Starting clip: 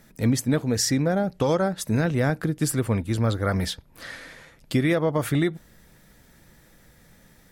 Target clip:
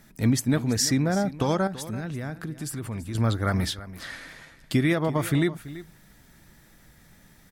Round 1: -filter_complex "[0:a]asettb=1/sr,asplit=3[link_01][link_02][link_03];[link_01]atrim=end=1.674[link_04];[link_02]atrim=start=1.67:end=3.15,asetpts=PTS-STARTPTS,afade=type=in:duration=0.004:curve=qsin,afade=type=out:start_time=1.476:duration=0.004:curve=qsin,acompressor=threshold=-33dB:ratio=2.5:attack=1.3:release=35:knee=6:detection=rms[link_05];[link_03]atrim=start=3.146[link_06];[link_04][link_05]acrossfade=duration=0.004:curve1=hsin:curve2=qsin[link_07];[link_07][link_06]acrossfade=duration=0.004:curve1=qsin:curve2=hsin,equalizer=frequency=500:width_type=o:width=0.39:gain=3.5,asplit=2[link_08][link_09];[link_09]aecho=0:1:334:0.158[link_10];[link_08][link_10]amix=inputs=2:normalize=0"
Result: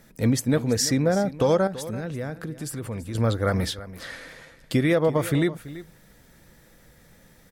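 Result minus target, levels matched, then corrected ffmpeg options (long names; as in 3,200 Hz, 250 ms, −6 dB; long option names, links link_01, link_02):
500 Hz band +4.5 dB
-filter_complex "[0:a]asettb=1/sr,asplit=3[link_01][link_02][link_03];[link_01]atrim=end=1.674[link_04];[link_02]atrim=start=1.67:end=3.15,asetpts=PTS-STARTPTS,afade=type=in:duration=0.004:curve=qsin,afade=type=out:start_time=1.476:duration=0.004:curve=qsin,acompressor=threshold=-33dB:ratio=2.5:attack=1.3:release=35:knee=6:detection=rms[link_05];[link_03]atrim=start=3.146[link_06];[link_04][link_05]acrossfade=duration=0.004:curve1=hsin:curve2=qsin[link_07];[link_07][link_06]acrossfade=duration=0.004:curve1=qsin:curve2=hsin,equalizer=frequency=500:width_type=o:width=0.39:gain=-7,asplit=2[link_08][link_09];[link_09]aecho=0:1:334:0.158[link_10];[link_08][link_10]amix=inputs=2:normalize=0"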